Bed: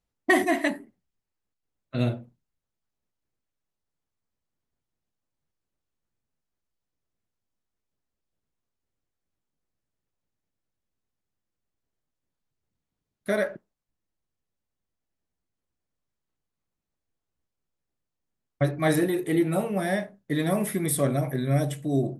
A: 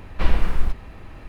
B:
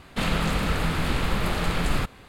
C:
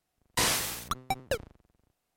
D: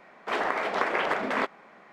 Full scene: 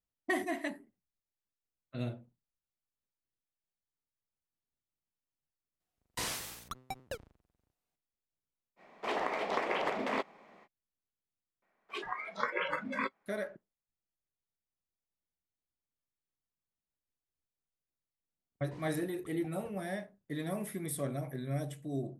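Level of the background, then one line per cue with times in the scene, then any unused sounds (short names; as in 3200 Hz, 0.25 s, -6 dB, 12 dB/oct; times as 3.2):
bed -12 dB
5.8 add C -10.5 dB
8.76 add D -4.5 dB, fades 0.05 s + bell 1500 Hz -8.5 dB 0.58 oct
11.62 add D -4.5 dB + spectral noise reduction 21 dB
18.34 add C -16.5 dB + band-pass 210 Hz, Q 0.64
not used: A, B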